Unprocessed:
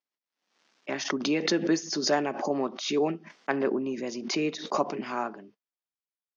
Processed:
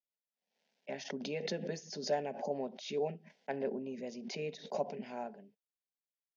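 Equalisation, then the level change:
high-shelf EQ 3,600 Hz −11 dB
phaser with its sweep stopped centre 320 Hz, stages 6
−5.5 dB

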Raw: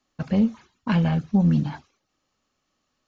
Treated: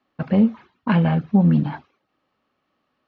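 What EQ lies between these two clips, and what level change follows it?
high-pass filter 200 Hz 6 dB per octave
high-frequency loss of the air 350 metres
+7.0 dB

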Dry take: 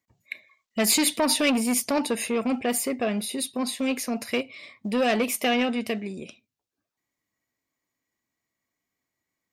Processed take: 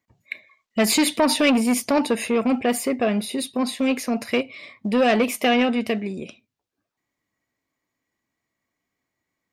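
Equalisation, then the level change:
high-shelf EQ 4,800 Hz −8.5 dB
+5.0 dB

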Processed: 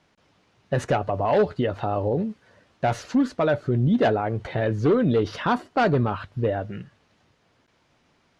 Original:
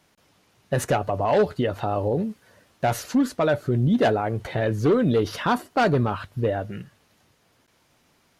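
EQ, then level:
high-frequency loss of the air 95 metres
0.0 dB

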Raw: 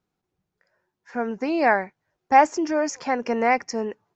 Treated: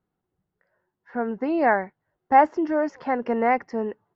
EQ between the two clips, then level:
high-frequency loss of the air 390 metres
notch filter 2,400 Hz, Q 7.4
+1.0 dB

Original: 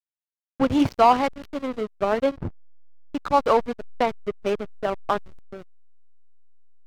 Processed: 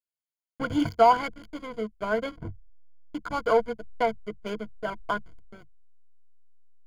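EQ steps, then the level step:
EQ curve with evenly spaced ripples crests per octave 1.8, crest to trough 15 dB
dynamic equaliser 1,500 Hz, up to +6 dB, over −40 dBFS, Q 3.9
−7.5 dB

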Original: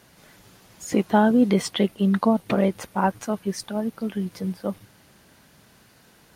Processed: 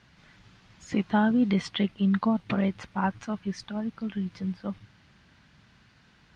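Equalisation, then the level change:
high-frequency loss of the air 140 metres
parametric band 490 Hz −12.5 dB 2 octaves
high-shelf EQ 7,800 Hz −8.5 dB
+1.5 dB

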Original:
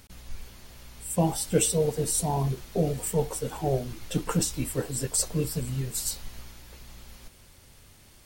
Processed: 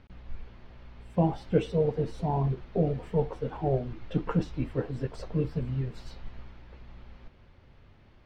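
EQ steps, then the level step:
high-frequency loss of the air 270 metres
high-shelf EQ 4,200 Hz −12 dB
0.0 dB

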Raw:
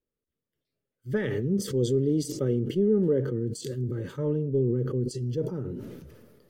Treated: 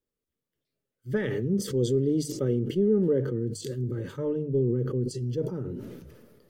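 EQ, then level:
mains-hum notches 50/100/150 Hz
0.0 dB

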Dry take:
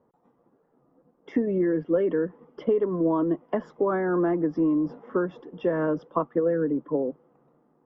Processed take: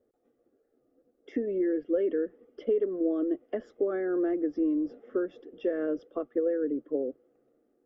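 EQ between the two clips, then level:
phaser with its sweep stopped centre 400 Hz, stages 4
−3.0 dB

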